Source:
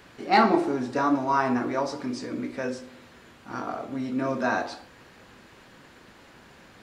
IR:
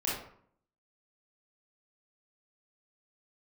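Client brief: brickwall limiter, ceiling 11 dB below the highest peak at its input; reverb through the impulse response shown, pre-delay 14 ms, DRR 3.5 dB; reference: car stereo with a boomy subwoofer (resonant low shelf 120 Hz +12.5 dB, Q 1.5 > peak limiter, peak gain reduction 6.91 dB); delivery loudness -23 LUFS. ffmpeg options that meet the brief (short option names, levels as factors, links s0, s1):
-filter_complex "[0:a]alimiter=limit=0.1:level=0:latency=1,asplit=2[s0][s1];[1:a]atrim=start_sample=2205,adelay=14[s2];[s1][s2]afir=irnorm=-1:irlink=0,volume=0.316[s3];[s0][s3]amix=inputs=2:normalize=0,lowshelf=f=120:t=q:w=1.5:g=12.5,volume=2.99,alimiter=limit=0.224:level=0:latency=1"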